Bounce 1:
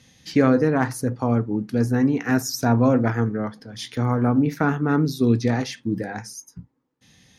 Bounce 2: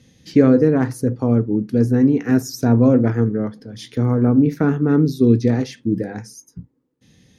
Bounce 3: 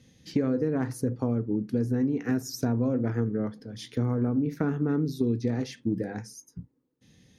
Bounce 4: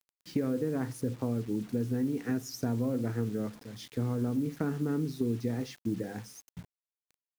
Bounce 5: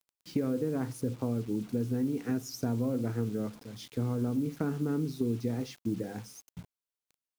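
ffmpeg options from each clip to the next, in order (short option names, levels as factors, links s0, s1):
-af "lowshelf=f=600:t=q:w=1.5:g=7,volume=0.708"
-af "acompressor=threshold=0.141:ratio=6,volume=0.531"
-af "acrusher=bits=7:mix=0:aa=0.000001,volume=0.596"
-af "equalizer=f=1800:w=5.1:g=-5.5"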